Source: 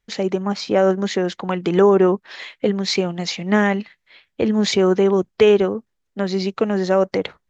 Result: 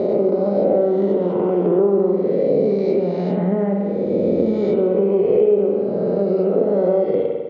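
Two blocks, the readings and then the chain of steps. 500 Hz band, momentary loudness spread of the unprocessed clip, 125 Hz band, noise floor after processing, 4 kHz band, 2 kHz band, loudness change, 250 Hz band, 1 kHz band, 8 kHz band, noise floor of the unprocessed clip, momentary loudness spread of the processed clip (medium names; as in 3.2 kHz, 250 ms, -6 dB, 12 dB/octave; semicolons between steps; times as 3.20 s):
+2.5 dB, 10 LU, +0.5 dB, -22 dBFS, under -20 dB, under -15 dB, +1.0 dB, +0.5 dB, -4.5 dB, no reading, -74 dBFS, 4 LU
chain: reverse spectral sustain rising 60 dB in 2.41 s; high-pass 86 Hz; distance through air 160 m; band-stop 1.7 kHz, Q 8.6; spring tank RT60 1.2 s, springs 50 ms, chirp 25 ms, DRR 2.5 dB; compression 3:1, threshold -17 dBFS, peak gain reduction 9.5 dB; FFT filter 140 Hz 0 dB, 590 Hz +5 dB, 1.1 kHz -12 dB, 5.8 kHz -24 dB; trim -1 dB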